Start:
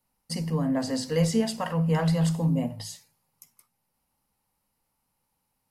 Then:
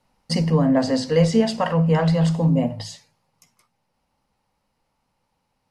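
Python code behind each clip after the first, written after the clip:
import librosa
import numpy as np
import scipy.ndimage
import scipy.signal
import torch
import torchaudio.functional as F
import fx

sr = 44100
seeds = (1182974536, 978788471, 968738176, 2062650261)

y = scipy.signal.sosfilt(scipy.signal.butter(2, 5500.0, 'lowpass', fs=sr, output='sos'), x)
y = fx.peak_eq(y, sr, hz=580.0, db=3.5, octaves=0.77)
y = fx.rider(y, sr, range_db=5, speed_s=0.5)
y = F.gain(torch.from_numpy(y), 6.5).numpy()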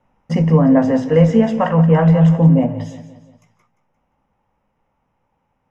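y = scipy.signal.lfilter(np.full(10, 1.0 / 10), 1.0, x)
y = fx.doubler(y, sr, ms=19.0, db=-13)
y = fx.echo_feedback(y, sr, ms=175, feedback_pct=46, wet_db=-13.5)
y = F.gain(torch.from_numpy(y), 5.0).numpy()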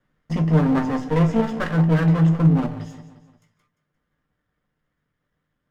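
y = fx.lower_of_two(x, sr, delay_ms=0.58)
y = fx.comb_fb(y, sr, f0_hz=150.0, decay_s=0.16, harmonics='all', damping=0.0, mix_pct=70)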